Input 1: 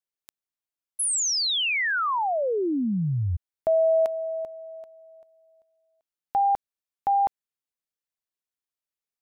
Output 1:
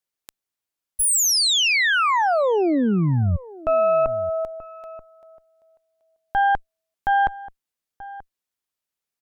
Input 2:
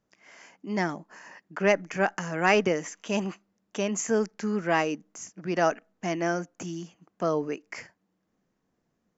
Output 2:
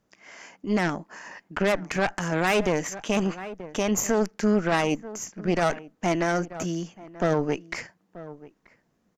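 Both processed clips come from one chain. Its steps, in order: added harmonics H 6 -15 dB, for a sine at -9 dBFS; outdoor echo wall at 160 m, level -20 dB; limiter -18 dBFS; gain +5.5 dB

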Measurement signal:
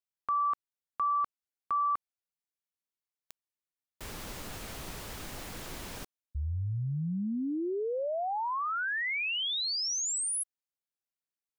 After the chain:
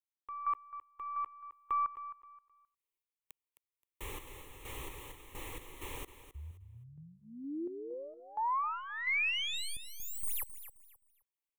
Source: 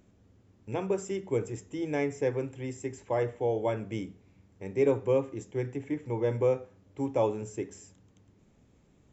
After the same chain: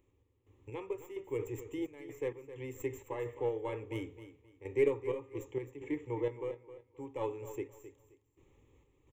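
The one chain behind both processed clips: tracing distortion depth 0.06 ms; dynamic EQ 1700 Hz, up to +4 dB, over -42 dBFS, Q 1; in parallel at -1 dB: compressor, threshold -37 dBFS; on the sum: fixed phaser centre 1000 Hz, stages 8; random-step tremolo 4.3 Hz, depth 90%; on a send: feedback echo 0.263 s, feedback 25%, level -13 dB; on the sum: gain -3 dB

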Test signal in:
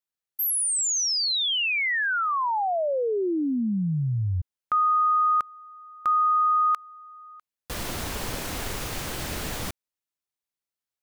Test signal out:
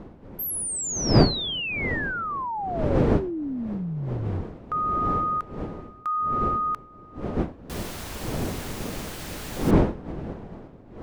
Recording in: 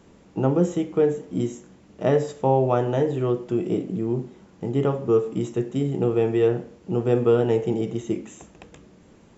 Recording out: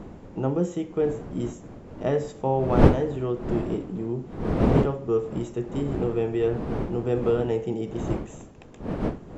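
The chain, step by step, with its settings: wind noise 350 Hz -24 dBFS; gain -4.5 dB

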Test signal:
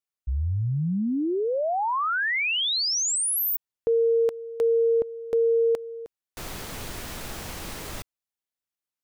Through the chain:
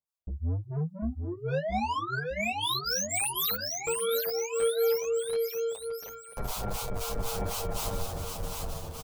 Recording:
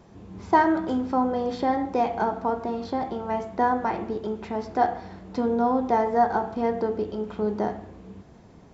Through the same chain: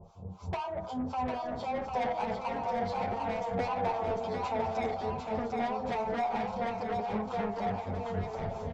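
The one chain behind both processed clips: tilt shelf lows +5 dB, about 1200 Hz; notches 60/120/180/240/300 Hz; AGC gain up to 15 dB; in parallel at +0.5 dB: limiter -9 dBFS; on the sum: compressor 5:1, threshold -14 dBFS; harmonic tremolo 3.9 Hz, depth 100%, crossover 860 Hz; fixed phaser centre 750 Hz, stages 4; soft clip -26.5 dBFS; on a send: bouncing-ball echo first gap 0.75 s, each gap 0.9×, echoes 5; on the sum: endless flanger 8.3 ms -0.25 Hz

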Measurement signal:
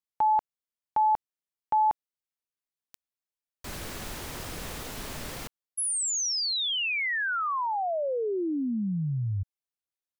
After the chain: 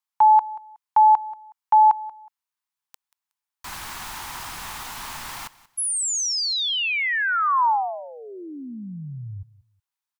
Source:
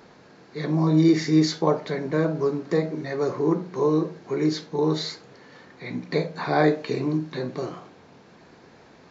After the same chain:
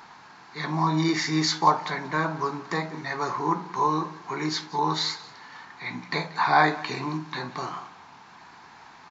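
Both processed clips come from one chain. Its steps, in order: resonant low shelf 690 Hz -9 dB, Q 3; feedback echo 0.184 s, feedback 24%, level -19.5 dB; gain +4 dB

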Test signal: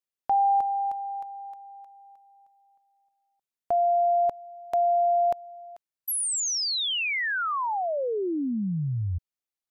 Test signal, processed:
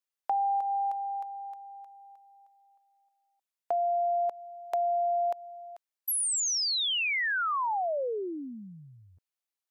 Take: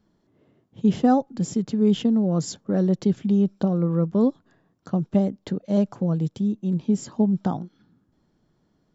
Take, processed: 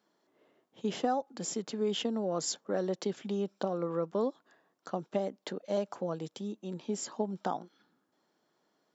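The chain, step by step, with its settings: HPF 500 Hz 12 dB/oct; compressor 6:1, threshold -26 dBFS

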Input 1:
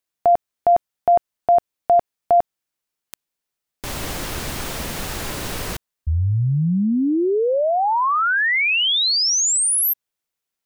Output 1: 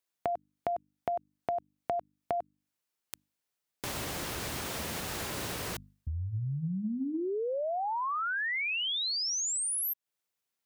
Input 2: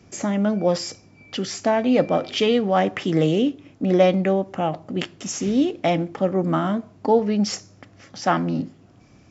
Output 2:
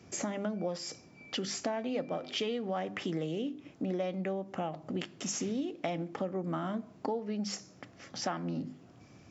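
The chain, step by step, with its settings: notches 50/100/150/200/250/300 Hz; compressor 6:1, threshold -29 dBFS; HPF 68 Hz; gain -3 dB

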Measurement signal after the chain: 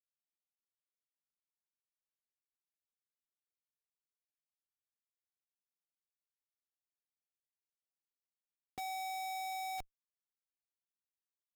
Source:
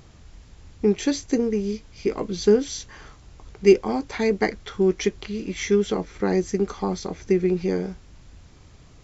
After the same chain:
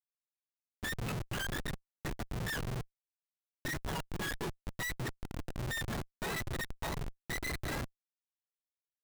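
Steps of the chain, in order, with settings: spectrum mirrored in octaves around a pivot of 860 Hz; de-hum 146.4 Hz, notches 4; Schmitt trigger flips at -25.5 dBFS; gain -8 dB

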